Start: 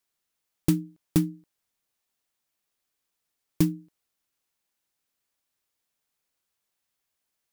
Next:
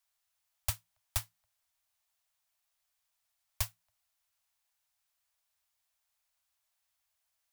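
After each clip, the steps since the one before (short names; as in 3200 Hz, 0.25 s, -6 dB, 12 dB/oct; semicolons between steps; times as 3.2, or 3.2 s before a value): Chebyshev band-stop 110–610 Hz, order 5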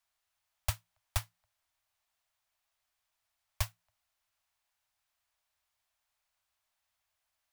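high shelf 4500 Hz -8.5 dB; gain +3.5 dB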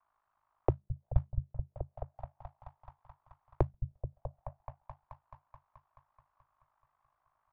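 ring modulator 26 Hz; repeats that get brighter 0.215 s, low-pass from 200 Hz, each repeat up 1 oct, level -6 dB; envelope low-pass 350–1100 Hz down, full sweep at -42 dBFS; gain +8.5 dB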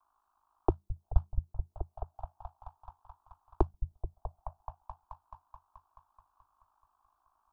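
fixed phaser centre 540 Hz, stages 6; gain +5 dB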